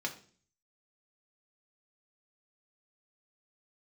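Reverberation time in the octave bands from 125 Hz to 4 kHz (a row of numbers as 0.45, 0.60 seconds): 0.75, 0.60, 0.50, 0.40, 0.40, 0.45 seconds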